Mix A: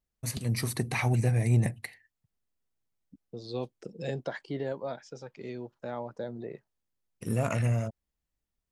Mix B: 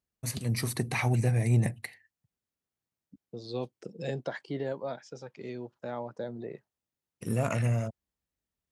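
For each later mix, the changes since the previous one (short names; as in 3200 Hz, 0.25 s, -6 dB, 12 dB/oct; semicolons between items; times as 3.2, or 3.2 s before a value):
master: add HPF 70 Hz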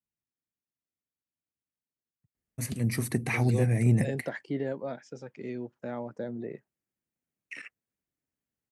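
first voice: entry +2.35 s; master: add graphic EQ 250/1000/2000/4000 Hz +5/-4/+4/-7 dB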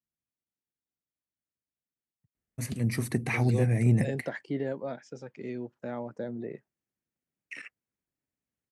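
first voice: add high shelf 8600 Hz -6 dB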